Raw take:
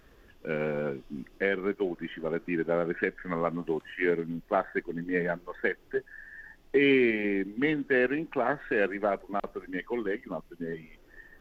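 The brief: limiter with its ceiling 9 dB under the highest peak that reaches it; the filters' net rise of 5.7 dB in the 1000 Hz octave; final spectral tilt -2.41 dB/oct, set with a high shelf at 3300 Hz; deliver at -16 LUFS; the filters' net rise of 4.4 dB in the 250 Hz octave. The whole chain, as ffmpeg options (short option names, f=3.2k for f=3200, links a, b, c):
-af "equalizer=f=250:t=o:g=5,equalizer=f=1k:t=o:g=8.5,highshelf=f=3.3k:g=-5,volume=13dB,alimiter=limit=-3dB:level=0:latency=1"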